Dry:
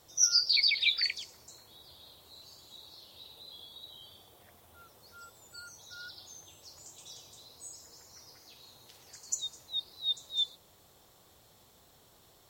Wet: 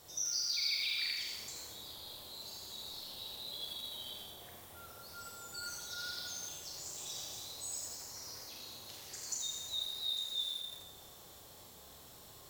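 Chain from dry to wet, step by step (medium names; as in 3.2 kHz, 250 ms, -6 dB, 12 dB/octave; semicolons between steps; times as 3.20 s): treble shelf 5.1 kHz +3.5 dB; compression 4:1, threshold -41 dBFS, peak gain reduction 19 dB; Schroeder reverb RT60 1.3 s, combs from 29 ms, DRR -1.5 dB; bit-crushed delay 82 ms, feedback 55%, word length 8-bit, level -4.5 dB; trim +1 dB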